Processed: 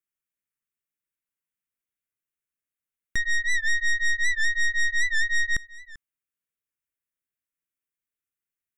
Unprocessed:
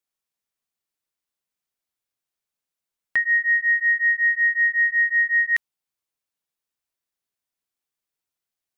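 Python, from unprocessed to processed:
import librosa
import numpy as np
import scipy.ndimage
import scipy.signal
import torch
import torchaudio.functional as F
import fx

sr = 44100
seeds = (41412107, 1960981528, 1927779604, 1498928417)

y = fx.tracing_dist(x, sr, depth_ms=0.29)
y = fx.fixed_phaser(y, sr, hz=1900.0, stages=4)
y = y + 10.0 ** (-19.5 / 20.0) * np.pad(y, (int(393 * sr / 1000.0), 0))[:len(y)]
y = fx.record_warp(y, sr, rpm=78.0, depth_cents=100.0)
y = y * 10.0 ** (-3.0 / 20.0)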